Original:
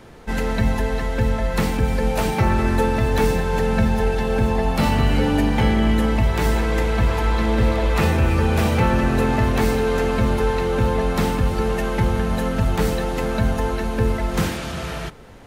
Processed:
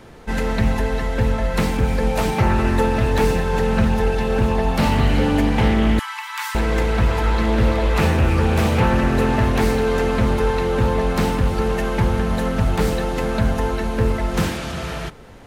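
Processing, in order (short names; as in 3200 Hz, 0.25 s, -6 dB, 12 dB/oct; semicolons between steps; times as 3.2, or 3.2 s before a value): 5.99–6.55 steep high-pass 880 Hz 96 dB/oct; Doppler distortion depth 0.23 ms; gain +1 dB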